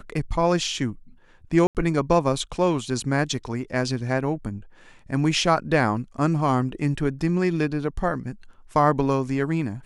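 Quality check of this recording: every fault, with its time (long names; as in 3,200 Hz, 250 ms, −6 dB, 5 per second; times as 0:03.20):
0:01.67–0:01.75: drop-out 78 ms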